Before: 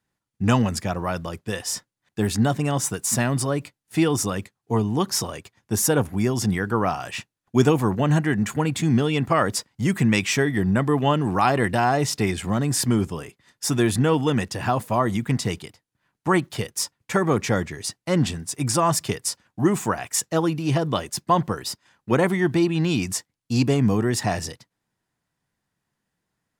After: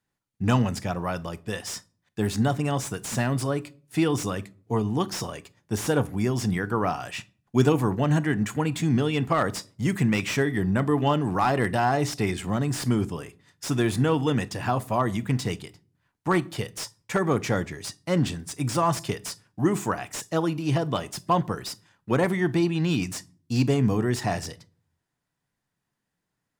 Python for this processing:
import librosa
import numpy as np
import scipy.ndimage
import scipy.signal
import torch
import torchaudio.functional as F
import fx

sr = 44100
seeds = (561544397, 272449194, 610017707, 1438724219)

y = fx.room_shoebox(x, sr, seeds[0], volume_m3=350.0, walls='furnished', distance_m=0.3)
y = fx.slew_limit(y, sr, full_power_hz=240.0)
y = F.gain(torch.from_numpy(y), -3.0).numpy()